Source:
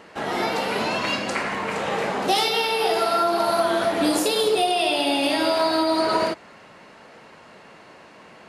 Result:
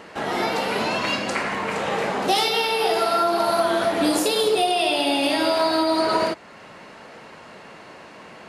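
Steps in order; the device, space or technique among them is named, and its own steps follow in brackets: parallel compression (in parallel at -4 dB: compression, threshold -41 dBFS, peak gain reduction 22 dB)

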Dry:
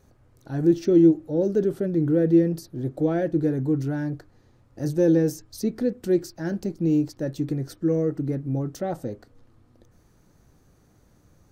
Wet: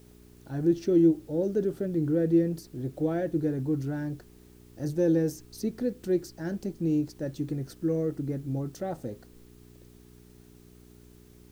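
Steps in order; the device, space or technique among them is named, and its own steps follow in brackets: video cassette with head-switching buzz (mains buzz 60 Hz, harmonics 7, -49 dBFS -2 dB/octave; white noise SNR 35 dB); trim -5 dB

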